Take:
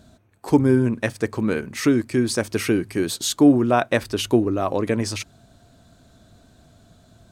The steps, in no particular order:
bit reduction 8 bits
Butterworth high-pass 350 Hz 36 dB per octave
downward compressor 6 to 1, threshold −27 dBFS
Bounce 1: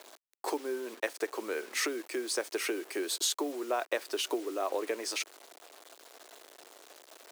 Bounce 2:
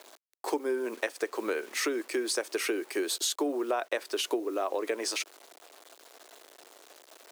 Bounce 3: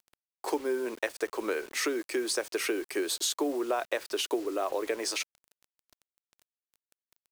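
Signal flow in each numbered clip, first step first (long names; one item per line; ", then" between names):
downward compressor, then bit reduction, then Butterworth high-pass
bit reduction, then Butterworth high-pass, then downward compressor
Butterworth high-pass, then downward compressor, then bit reduction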